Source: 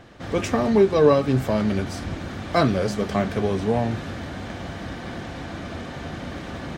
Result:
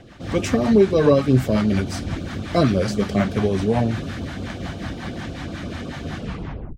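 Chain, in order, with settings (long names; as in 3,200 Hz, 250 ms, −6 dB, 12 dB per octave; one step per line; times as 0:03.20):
turntable brake at the end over 0.61 s
rotating-speaker cabinet horn 5.5 Hz
auto-filter notch sine 5.5 Hz 400–2,000 Hz
level +5.5 dB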